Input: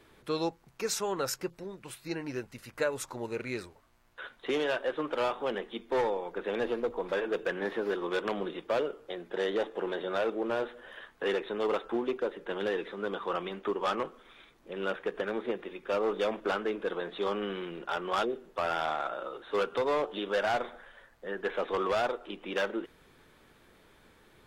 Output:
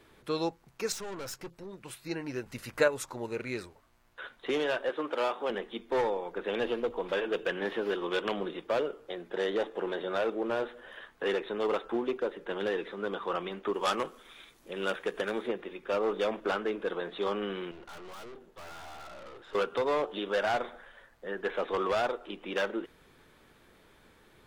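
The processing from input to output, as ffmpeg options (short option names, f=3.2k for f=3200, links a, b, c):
-filter_complex "[0:a]asettb=1/sr,asplit=3[a][b][c];[a]atrim=end=0.924[d];[b]atrim=start=0.92:end=1.73,asetpts=PTS-STARTPTS,afade=t=in:d=0.004:c=qsin,afade=t=out:st=0.806:d=0.004:c=qsin,aeval=exprs='(tanh(70.8*val(0)+0.4)-tanh(0.4))/70.8':c=same[e];[c]atrim=start=1.726[f];[d][e]acrossfade=d=0.004:c1=hsin:c2=qsin[g];[g][f]acrossfade=d=0.004:c1=qsin:c2=hsin,asettb=1/sr,asplit=3[h][i][j];[h]atrim=end=2.464[k];[i]atrim=start=2.46:end=2.88,asetpts=PTS-STARTPTS,afade=t=in:d=0.004:c=qsin,afade=t=out:st=0.416:d=0.004:c=qsin,acontrast=33[l];[j]atrim=start=2.876[m];[k][l]acrossfade=d=0.004:c1=hsin:c2=qsin[n];[n][m]acrossfade=d=0.004:c1=qsin:c2=hsin,asettb=1/sr,asplit=3[o][p][q];[o]atrim=end=4.894[r];[p]atrim=start=4.89:end=5.5,asetpts=PTS-STARTPTS,afade=t=in:d=0.004:c=qsin,afade=t=out:st=0.606:d=0.004:c=qsin,highpass=230[s];[q]atrim=start=5.496[t];[r][s]acrossfade=d=0.004:c1=hsin:c2=qsin[u];[u][t]acrossfade=d=0.004:c1=qsin:c2=hsin,asettb=1/sr,asplit=3[v][w][x];[v]atrim=end=6.484[y];[w]atrim=start=6.48:end=8.36,asetpts=PTS-STARTPTS,afade=t=in:d=0.004:c=qsin,afade=t=out:st=1.876:d=0.004:c=qsin,equalizer=f=3k:t=o:w=0.45:g=7[z];[x]atrim=start=8.356[aa];[y][z]acrossfade=d=0.004:c1=hsin:c2=qsin[ab];[ab][aa]acrossfade=d=0.004:c1=qsin:c2=hsin,asettb=1/sr,asplit=3[ac][ad][ae];[ac]atrim=end=13.744[af];[ad]atrim=start=13.74:end=15.48,asetpts=PTS-STARTPTS,afade=t=in:d=0.004:c=qsin,afade=t=out:st=1.736:d=0.004:c=qsin,equalizer=f=11k:w=0.32:g=12.5[ag];[ae]atrim=start=15.476[ah];[af][ag]acrossfade=d=0.004:c1=hsin:c2=qsin[ai];[ai][ah]acrossfade=d=0.004:c1=qsin:c2=hsin,asettb=1/sr,asplit=3[aj][ak][al];[aj]atrim=end=17.714[am];[ak]atrim=start=17.71:end=19.55,asetpts=PTS-STARTPTS,afade=t=in:d=0.004:c=qsin,afade=t=out:st=1.836:d=0.004:c=qsin,aeval=exprs='(tanh(178*val(0)+0.6)-tanh(0.6))/178':c=same[an];[al]atrim=start=19.546[ao];[am][an]acrossfade=d=0.004:c1=hsin:c2=qsin[ap];[ap][ao]acrossfade=d=0.004:c1=qsin:c2=hsin"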